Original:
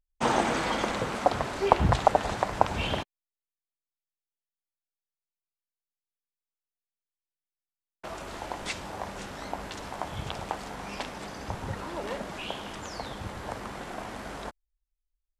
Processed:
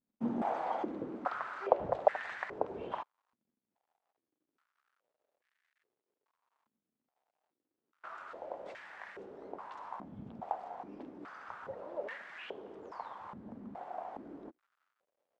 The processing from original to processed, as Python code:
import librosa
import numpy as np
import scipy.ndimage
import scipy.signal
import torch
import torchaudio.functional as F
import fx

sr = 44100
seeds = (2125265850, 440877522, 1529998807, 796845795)

y = fx.dmg_crackle(x, sr, seeds[0], per_s=290.0, level_db=-52.0)
y = fx.filter_held_bandpass(y, sr, hz=2.4, low_hz=230.0, high_hz=1800.0)
y = y * librosa.db_to_amplitude(1.0)